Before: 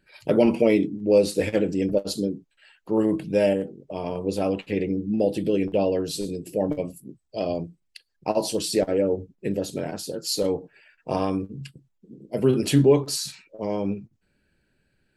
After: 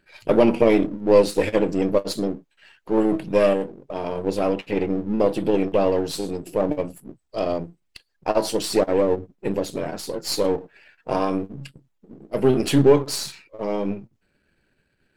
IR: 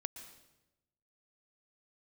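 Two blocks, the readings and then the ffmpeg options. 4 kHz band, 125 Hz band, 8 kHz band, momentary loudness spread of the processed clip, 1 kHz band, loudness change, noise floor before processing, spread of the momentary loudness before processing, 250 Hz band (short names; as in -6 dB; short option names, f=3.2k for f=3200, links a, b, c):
+1.0 dB, -0.5 dB, -0.5 dB, 14 LU, +5.5 dB, +2.5 dB, -72 dBFS, 14 LU, +1.5 dB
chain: -af "aeval=exprs='if(lt(val(0),0),0.447*val(0),val(0))':c=same,bass=f=250:g=-4,treble=f=4k:g=-4,volume=6dB"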